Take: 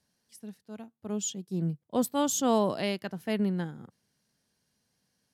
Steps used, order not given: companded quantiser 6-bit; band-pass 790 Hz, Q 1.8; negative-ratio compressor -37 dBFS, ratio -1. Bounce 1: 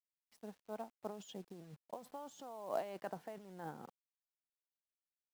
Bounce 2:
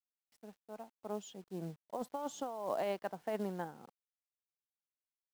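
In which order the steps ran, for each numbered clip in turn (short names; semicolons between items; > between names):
negative-ratio compressor > band-pass > companded quantiser; band-pass > negative-ratio compressor > companded quantiser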